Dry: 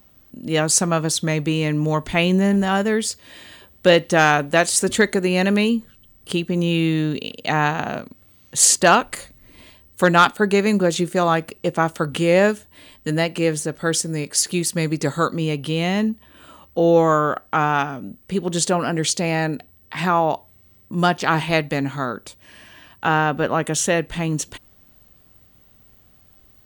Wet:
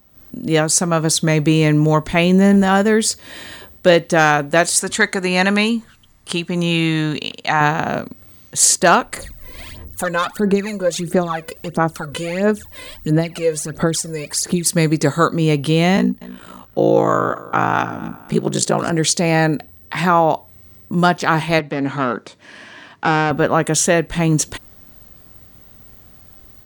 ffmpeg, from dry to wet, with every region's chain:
-filter_complex "[0:a]asettb=1/sr,asplit=3[a][b][c];[a]atrim=end=4.804[d];[b]atrim=start=4.8:end=7.61,asetpts=PTS-STARTPTS,afade=t=in:d=0.004:c=qsin,afade=t=out:st=2.806:d=0.004:c=qsin,lowpass=11k,lowshelf=f=660:t=q:w=1.5:g=-6.5[e];[c]atrim=start=7.606[f];[d][e]acrossfade=d=0.004:c1=hsin:c2=qsin[g];[g][f]acrossfade=d=0.004:c1=qsin:c2=hsin,asettb=1/sr,asplit=3[h][i][j];[h]atrim=end=9.164[k];[i]atrim=start=9.16:end=14.66,asetpts=PTS-STARTPTS,afade=t=in:d=0.004:c=qsin,afade=t=out:st=5.496:d=0.004:c=qsin,acompressor=threshold=-39dB:ratio=2:attack=3.2:release=140:knee=1:detection=peak,aphaser=in_gain=1:out_gain=1:delay=2:decay=0.73:speed=1.5:type=sinusoidal[l];[j]atrim=start=14.656[m];[k][l]acrossfade=d=0.004:c1=hsin:c2=qsin[n];[n][m]acrossfade=d=0.004:c1=qsin:c2=hsin,asettb=1/sr,asplit=3[o][p][q];[o]atrim=end=15.964[r];[p]atrim=start=15.96:end=18.91,asetpts=PTS-STARTPTS,afade=t=in:d=0.004:c=qsin,afade=t=out:st=2.946:d=0.004:c=qsin,aecho=1:1:253|506|759:0.1|0.035|0.0123,atrim=end_sample=130095,aeval=exprs='val(0)*sin(2*PI*28*n/s)':c=same[s];[q]atrim=start=18.906[t];[r][s]acrossfade=d=0.004:c1=hsin:c2=qsin[u];[u][t]acrossfade=d=0.004:c1=qsin:c2=hsin,asettb=1/sr,asplit=3[v][w][x];[v]atrim=end=21.594[y];[w]atrim=start=21.59:end=23.31,asetpts=PTS-STARTPTS,afade=t=in:d=0.004:c=qsin,afade=t=out:st=1.716:d=0.004:c=qsin,acrossover=split=3000[z][aa];[aa]acompressor=threshold=-43dB:ratio=4:attack=1:release=60[ab];[z][ab]amix=inputs=2:normalize=0,aeval=exprs='(tanh(7.08*val(0)+0.35)-tanh(0.35))/7.08':c=same,highpass=160,lowpass=6k[ac];[x]atrim=start=23.306[ad];[y][ac]acrossfade=d=0.004:c1=hsin:c2=qsin[ae];[ae][ad]acrossfade=d=0.004:c1=qsin:c2=hsin,equalizer=f=2.9k:w=2.7:g=-4,dynaudnorm=f=110:g=3:m=10dB,volume=-1dB"

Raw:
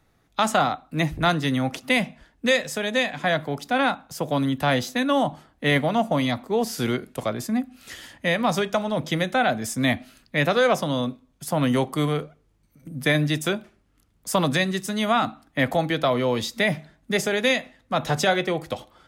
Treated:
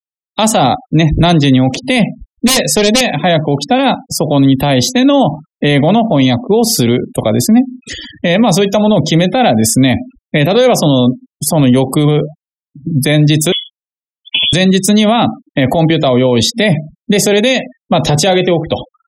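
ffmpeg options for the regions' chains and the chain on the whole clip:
-filter_complex "[0:a]asettb=1/sr,asplit=3[a][b][c];[a]atrim=end=2.474[d];[b]atrim=start=2.47:end=3.01,asetpts=PTS-STARTPTS,afade=t=in:d=0.004:c=qsin,afade=t=out:st=0.536:d=0.004:c=qsin,equalizer=f=1.2k:t=o:w=0.25:g=-3.5,aeval=exprs='0.0794*(abs(mod(val(0)/0.0794+3,4)-2)-1)':c=same[e];[c]atrim=start=3.006[f];[d][e]acrossfade=d=0.004:c1=hsin:c2=qsin[g];[g][f]acrossfade=d=0.004:c1=qsin:c2=hsin,asettb=1/sr,asplit=3[h][i][j];[h]atrim=end=13.524[k];[i]atrim=start=13.52:end=14.53,asetpts=PTS-STARTPTS,afade=t=in:d=0.004:c=qsin,afade=t=out:st=1.006:d=0.004:c=qsin,acompressor=threshold=-28dB:ratio=5:attack=3.2:release=140:knee=1:detection=peak,lowpass=f=3.1k:t=q:w=0.5098,lowpass=f=3.1k:t=q:w=0.6013,lowpass=f=3.1k:t=q:w=0.9,lowpass=f=3.1k:t=q:w=2.563,afreqshift=-3600[l];[j]atrim=start=14.526[m];[k][l]acrossfade=d=0.004:c1=hsin:c2=qsin[n];[n][m]acrossfade=d=0.004:c1=qsin:c2=hsin,afftfilt=real='re*gte(hypot(re,im),0.0126)':imag='im*gte(hypot(re,im),0.0126)':win_size=1024:overlap=0.75,equalizer=f=1.4k:t=o:w=0.98:g=-14.5,alimiter=level_in=22dB:limit=-1dB:release=50:level=0:latency=1,volume=-1dB"

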